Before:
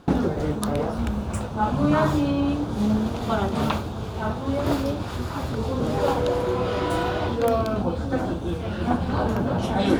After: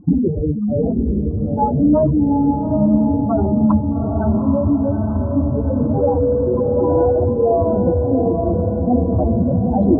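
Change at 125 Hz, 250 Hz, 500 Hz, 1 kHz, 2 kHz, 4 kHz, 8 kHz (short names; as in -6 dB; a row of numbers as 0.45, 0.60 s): +7.5 dB, +8.5 dB, +8.0 dB, +2.5 dB, under -15 dB, under -40 dB, under -40 dB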